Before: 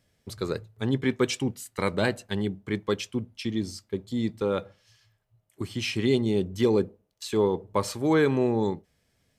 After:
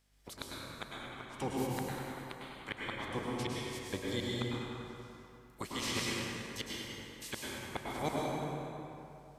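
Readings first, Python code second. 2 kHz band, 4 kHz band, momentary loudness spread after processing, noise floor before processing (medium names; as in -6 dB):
-7.0 dB, -4.5 dB, 11 LU, -72 dBFS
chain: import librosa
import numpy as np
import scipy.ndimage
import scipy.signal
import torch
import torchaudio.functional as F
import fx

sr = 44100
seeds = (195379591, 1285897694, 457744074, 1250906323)

y = fx.spec_clip(x, sr, under_db=23)
y = fx.gate_flip(y, sr, shuts_db=-15.0, range_db=-29)
y = fx.add_hum(y, sr, base_hz=50, snr_db=29)
y = fx.echo_bbd(y, sr, ms=98, stages=2048, feedback_pct=70, wet_db=-8.5)
y = fx.rev_plate(y, sr, seeds[0], rt60_s=2.6, hf_ratio=0.65, predelay_ms=95, drr_db=-4.0)
y = y * librosa.db_to_amplitude(-9.0)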